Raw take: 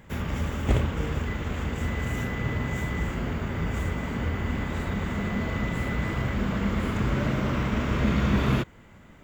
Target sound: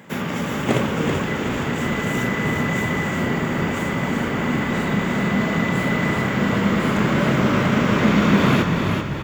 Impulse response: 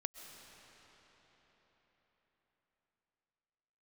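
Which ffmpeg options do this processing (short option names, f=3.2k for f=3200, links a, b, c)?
-filter_complex "[0:a]highpass=f=150:w=0.5412,highpass=f=150:w=1.3066,asplit=7[a][b][c][d][e][f][g];[b]adelay=385,afreqshift=-32,volume=-5dB[h];[c]adelay=770,afreqshift=-64,volume=-11.9dB[i];[d]adelay=1155,afreqshift=-96,volume=-18.9dB[j];[e]adelay=1540,afreqshift=-128,volume=-25.8dB[k];[f]adelay=1925,afreqshift=-160,volume=-32.7dB[l];[g]adelay=2310,afreqshift=-192,volume=-39.7dB[m];[a][h][i][j][k][l][m]amix=inputs=7:normalize=0,asplit=2[n][o];[1:a]atrim=start_sample=2205,asetrate=57330,aresample=44100[p];[o][p]afir=irnorm=-1:irlink=0,volume=4dB[q];[n][q]amix=inputs=2:normalize=0,volume=3dB"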